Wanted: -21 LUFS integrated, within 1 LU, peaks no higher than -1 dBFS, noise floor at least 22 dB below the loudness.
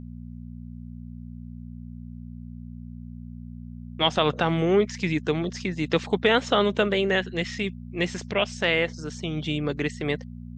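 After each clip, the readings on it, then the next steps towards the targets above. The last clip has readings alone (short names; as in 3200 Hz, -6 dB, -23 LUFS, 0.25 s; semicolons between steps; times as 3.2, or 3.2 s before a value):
hum 60 Hz; harmonics up to 240 Hz; hum level -36 dBFS; loudness -25.0 LUFS; peak -7.0 dBFS; loudness target -21.0 LUFS
-> de-hum 60 Hz, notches 4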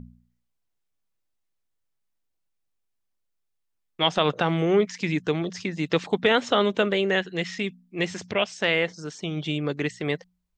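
hum none; loudness -25.0 LUFS; peak -7.5 dBFS; loudness target -21.0 LUFS
-> gain +4 dB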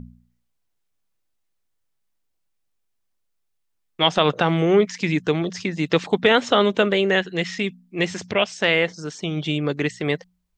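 loudness -21.0 LUFS; peak -3.5 dBFS; noise floor -73 dBFS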